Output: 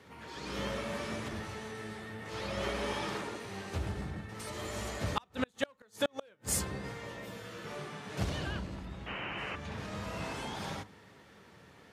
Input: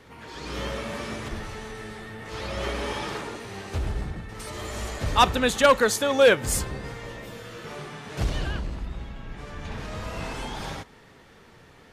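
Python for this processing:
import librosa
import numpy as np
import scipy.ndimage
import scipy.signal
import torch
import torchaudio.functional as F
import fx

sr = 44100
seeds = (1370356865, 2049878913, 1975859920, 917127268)

y = scipy.signal.sosfilt(scipy.signal.butter(4, 69.0, 'highpass', fs=sr, output='sos'), x)
y = fx.rev_fdn(y, sr, rt60_s=0.36, lf_ratio=1.45, hf_ratio=0.25, size_ms=30.0, drr_db=15.0)
y = fx.gate_flip(y, sr, shuts_db=-13.0, range_db=-38)
y = fx.spec_paint(y, sr, seeds[0], shape='noise', start_s=9.06, length_s=0.5, low_hz=260.0, high_hz=3100.0, level_db=-35.0)
y = y * librosa.db_to_amplitude(-5.0)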